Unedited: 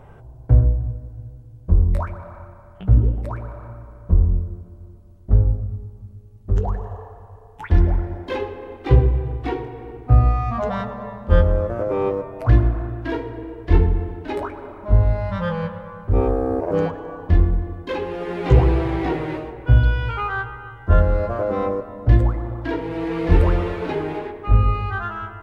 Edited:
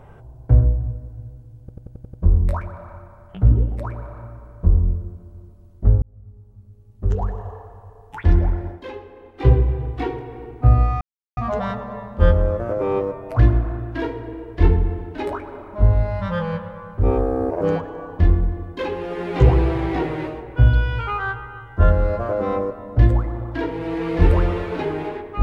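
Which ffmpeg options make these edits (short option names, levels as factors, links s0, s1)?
-filter_complex "[0:a]asplit=11[s0][s1][s2][s3][s4][s5][s6][s7][s8][s9][s10];[s0]atrim=end=1.692[s11];[s1]atrim=start=1.598:end=1.692[s12];[s2]atrim=start=1.598:end=1.692[s13];[s3]atrim=start=1.598:end=1.692[s14];[s4]atrim=start=1.598:end=1.692[s15];[s5]atrim=start=1.598:end=1.692[s16];[s6]atrim=start=1.598:end=5.48,asetpts=PTS-STARTPTS,afade=t=out:st=3.878:d=0.004:c=hsin[s17];[s7]atrim=start=5.48:end=8.28,asetpts=PTS-STARTPTS,afade=t=in:d=1.22,afade=t=out:st=2.66:d=0.14:silence=0.375837[s18];[s8]atrim=start=8.28:end=8.81,asetpts=PTS-STARTPTS,volume=0.376[s19];[s9]atrim=start=8.81:end=10.47,asetpts=PTS-STARTPTS,afade=t=in:d=0.14:silence=0.375837,afade=t=out:st=1.656:d=0.004:c=hsin,apad=pad_dur=0.36[s20];[s10]atrim=start=10.47,asetpts=PTS-STARTPTS,afade=t=in:d=0.004:c=hsin[s21];[s11][s12]acrossfade=d=0.004:c1=hsin:c2=hsin[s22];[s22][s13]acrossfade=d=0.004:c1=hsin:c2=hsin[s23];[s23][s14]acrossfade=d=0.004:c1=hsin:c2=hsin[s24];[s24][s15]acrossfade=d=0.004:c1=hsin:c2=hsin[s25];[s25][s16]acrossfade=d=0.004:c1=hsin:c2=hsin[s26];[s17][s18][s19][s20][s21]concat=n=5:v=0:a=1[s27];[s26][s27]acrossfade=d=0.004:c1=hsin:c2=hsin"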